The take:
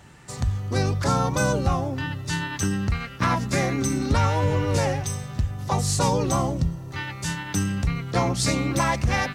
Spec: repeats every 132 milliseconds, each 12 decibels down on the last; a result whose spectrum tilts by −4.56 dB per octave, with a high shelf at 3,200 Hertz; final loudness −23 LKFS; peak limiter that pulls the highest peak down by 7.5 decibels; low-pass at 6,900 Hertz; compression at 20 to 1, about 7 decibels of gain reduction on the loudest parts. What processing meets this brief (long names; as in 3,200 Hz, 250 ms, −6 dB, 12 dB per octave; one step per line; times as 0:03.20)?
low-pass filter 6,900 Hz
high-shelf EQ 3,200 Hz +7 dB
downward compressor 20 to 1, threshold −23 dBFS
brickwall limiter −20 dBFS
repeating echo 132 ms, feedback 25%, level −12 dB
level +6.5 dB